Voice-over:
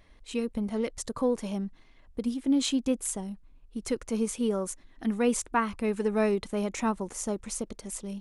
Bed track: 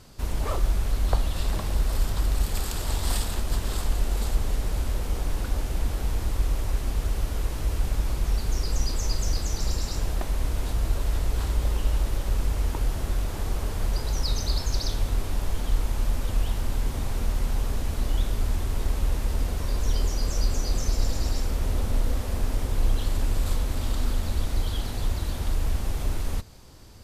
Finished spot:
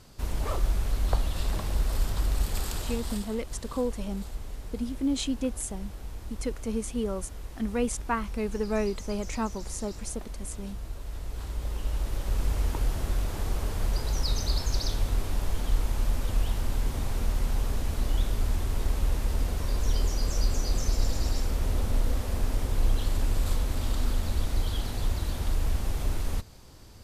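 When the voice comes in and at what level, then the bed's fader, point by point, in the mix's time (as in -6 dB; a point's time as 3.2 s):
2.55 s, -2.5 dB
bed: 2.75 s -2.5 dB
3.3 s -12.5 dB
11.01 s -12.5 dB
12.5 s -1.5 dB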